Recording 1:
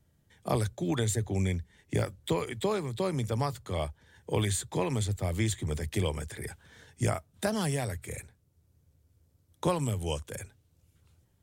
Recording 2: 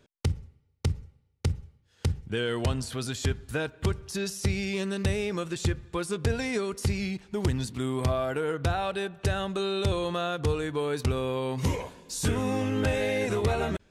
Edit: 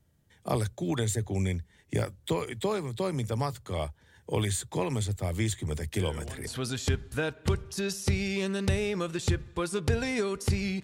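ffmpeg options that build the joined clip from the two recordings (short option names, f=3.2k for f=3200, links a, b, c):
-filter_complex "[1:a]asplit=2[a][b];[0:a]apad=whole_dur=10.83,atrim=end=10.83,atrim=end=6.472[c];[b]atrim=start=2.838:end=7.2[d];[a]atrim=start=2.33:end=2.84,asetpts=PTS-STARTPTS,volume=-14.5dB,afade=t=in:d=0.004:c=hsin,afade=t=out:st=0.506:d=0.004:c=hsin,adelay=5960[e];[c][d]acrossfade=d=0.004:c1=hsin:c2=hsin[f];[f][e]amix=inputs=2:normalize=0"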